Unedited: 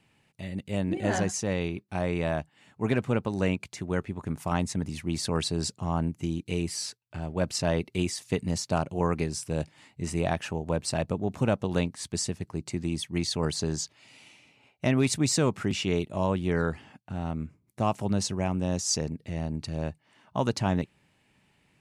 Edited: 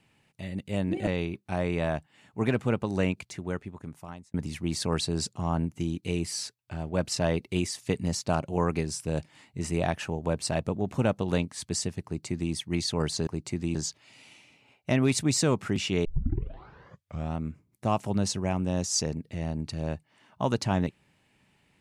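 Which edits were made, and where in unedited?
1.07–1.5 cut
3.53–4.77 fade out
12.48–12.96 copy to 13.7
16 tape start 1.31 s

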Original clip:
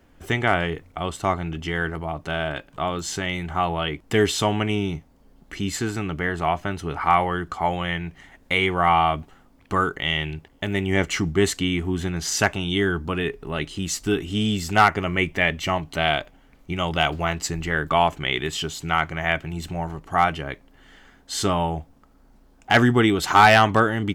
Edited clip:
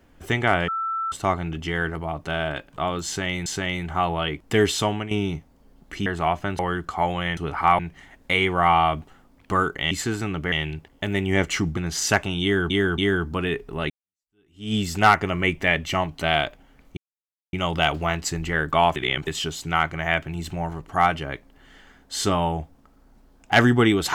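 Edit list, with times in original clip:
0.68–1.12 bleep 1330 Hz -23.5 dBFS
3.06–3.46 loop, 2 plays
4.27–4.71 fade out equal-power, to -11.5 dB
5.66–6.27 move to 10.12
6.8–7.22 move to 8
11.37–12.07 cut
12.72–13 loop, 3 plays
13.64–14.48 fade in exponential
16.71 insert silence 0.56 s
18.14–18.45 reverse

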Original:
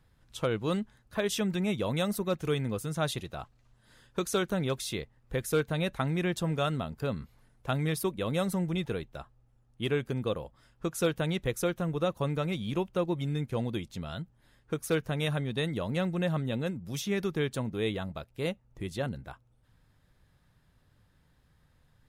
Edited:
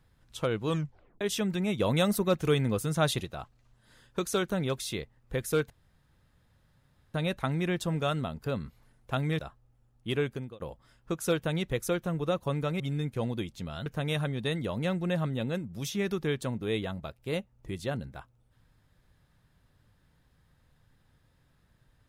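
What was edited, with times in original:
0.68 tape stop 0.53 s
1.8–3.25 gain +4 dB
5.7 insert room tone 1.44 s
7.95–9.13 cut
10–10.34 fade out
12.54–13.16 cut
14.22–14.98 cut

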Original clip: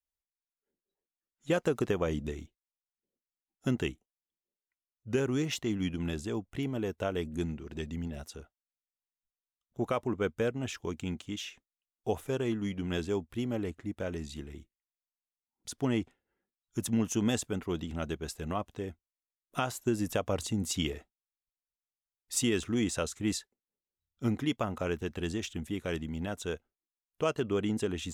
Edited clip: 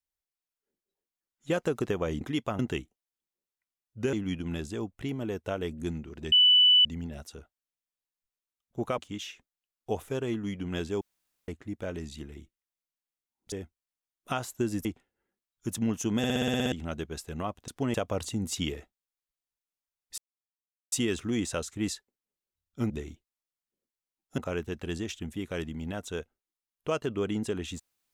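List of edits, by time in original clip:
2.21–3.69 swap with 24.34–24.72
5.23–5.67 cut
7.86 add tone 2980 Hz -16 dBFS 0.53 s
9.99–11.16 cut
13.19–13.66 room tone
15.7–15.96 swap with 18.79–20.12
17.29 stutter in place 0.06 s, 9 plays
22.36 insert silence 0.74 s

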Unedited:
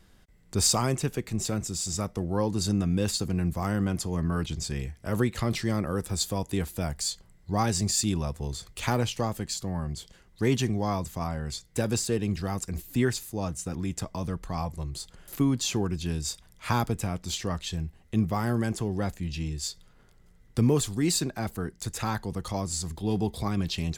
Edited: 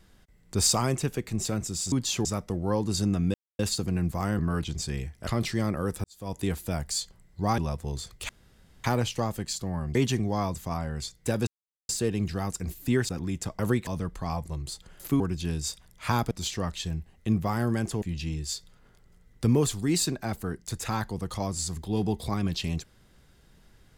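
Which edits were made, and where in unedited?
3.01 insert silence 0.25 s
3.81–4.21 cut
5.09–5.37 move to 14.15
6.14–6.46 fade in quadratic
7.68–8.14 cut
8.85 insert room tone 0.55 s
9.96–10.45 cut
11.97 insert silence 0.42 s
13.17–13.65 cut
15.48–15.81 move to 1.92
16.92–17.18 cut
18.89–19.16 cut

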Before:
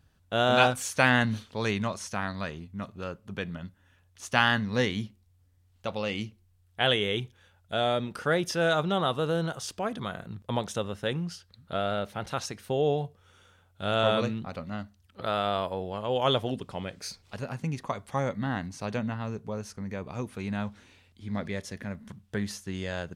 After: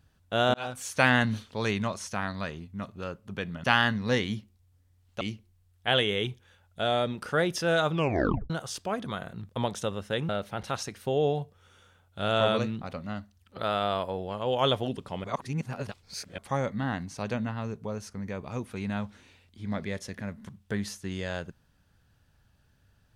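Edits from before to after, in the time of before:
0.54–1.02 fade in linear
3.64–4.31 cut
5.88–6.14 cut
8.83 tape stop 0.60 s
11.22–11.92 cut
16.87–18.01 reverse

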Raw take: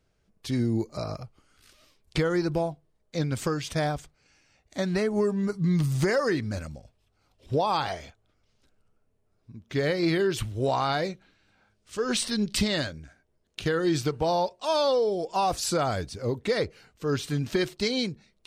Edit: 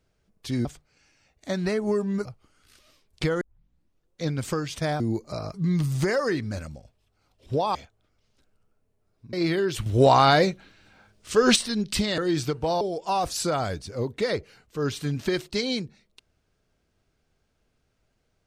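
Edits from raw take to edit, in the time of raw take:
0.65–1.19 swap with 3.94–5.54
2.35 tape start 0.83 s
7.75–8 cut
9.58–9.95 cut
10.48–12.18 gain +9 dB
12.8–13.76 cut
14.39–15.08 cut

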